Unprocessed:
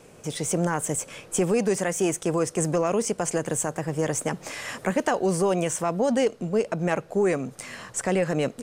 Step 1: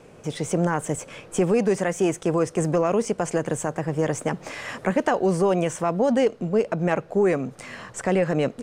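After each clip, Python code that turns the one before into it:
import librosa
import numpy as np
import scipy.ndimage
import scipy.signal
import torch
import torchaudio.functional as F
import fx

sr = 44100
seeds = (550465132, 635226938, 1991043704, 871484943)

y = fx.lowpass(x, sr, hz=2900.0, slope=6)
y = y * 10.0 ** (2.5 / 20.0)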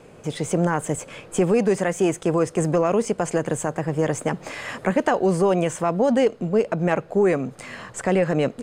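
y = fx.notch(x, sr, hz=5700.0, q=11.0)
y = y * 10.0 ** (1.5 / 20.0)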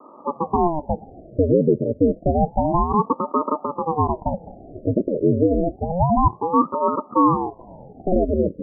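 y = scipy.signal.sosfilt(scipy.signal.butter(16, 540.0, 'lowpass', fs=sr, output='sos'), x)
y = fx.ring_lfo(y, sr, carrier_hz=400.0, swing_pct=90, hz=0.29)
y = y * 10.0 ** (5.5 / 20.0)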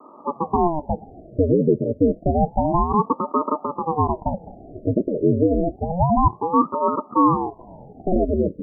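y = fx.notch(x, sr, hz=530.0, q=12.0)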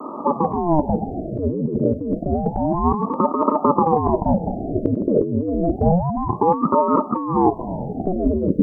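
y = fx.peak_eq(x, sr, hz=220.0, db=5.0, octaves=1.4)
y = fx.over_compress(y, sr, threshold_db=-25.0, ratio=-1.0)
y = y * 10.0 ** (6.0 / 20.0)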